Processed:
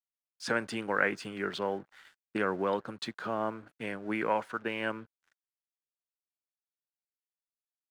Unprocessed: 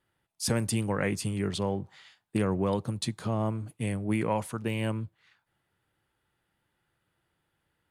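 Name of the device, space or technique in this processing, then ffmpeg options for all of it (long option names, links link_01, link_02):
pocket radio on a weak battery: -af "highpass=320,lowpass=3900,aeval=exprs='sgn(val(0))*max(abs(val(0))-0.00112,0)':channel_layout=same,equalizer=frequency=1500:width_type=o:width=0.5:gain=11"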